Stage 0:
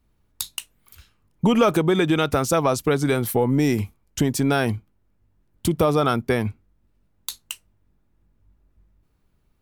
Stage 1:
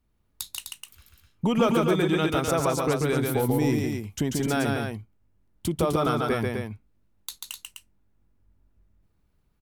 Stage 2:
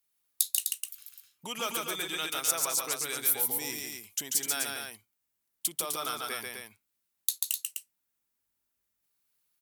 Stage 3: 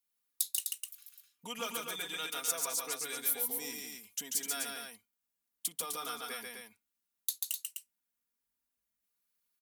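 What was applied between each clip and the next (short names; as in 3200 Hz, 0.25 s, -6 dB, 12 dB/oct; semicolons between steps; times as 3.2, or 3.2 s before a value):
loudspeakers at several distances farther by 48 m -3 dB, 87 m -6 dB; gain -6 dB
differentiator; gain +7 dB
comb 4.2 ms, depth 69%; gain -7 dB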